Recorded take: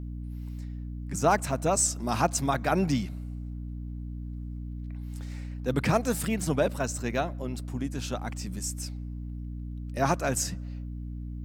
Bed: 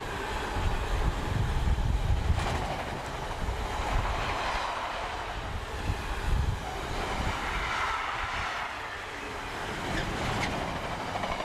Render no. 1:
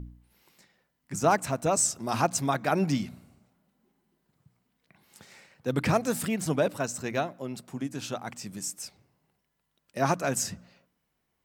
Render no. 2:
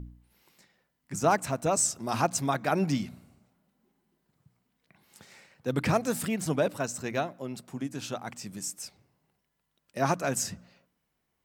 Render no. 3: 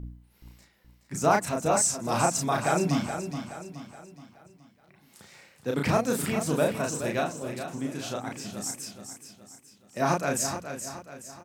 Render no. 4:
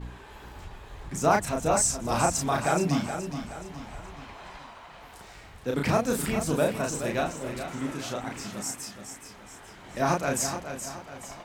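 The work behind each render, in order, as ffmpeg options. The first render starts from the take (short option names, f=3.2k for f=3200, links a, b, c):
-af "bandreject=f=60:t=h:w=4,bandreject=f=120:t=h:w=4,bandreject=f=180:t=h:w=4,bandreject=f=240:t=h:w=4,bandreject=f=300:t=h:w=4"
-af "volume=-1dB"
-filter_complex "[0:a]asplit=2[a][b];[b]adelay=34,volume=-2.5dB[c];[a][c]amix=inputs=2:normalize=0,aecho=1:1:423|846|1269|1692|2115:0.355|0.156|0.0687|0.0302|0.0133"
-filter_complex "[1:a]volume=-14dB[a];[0:a][a]amix=inputs=2:normalize=0"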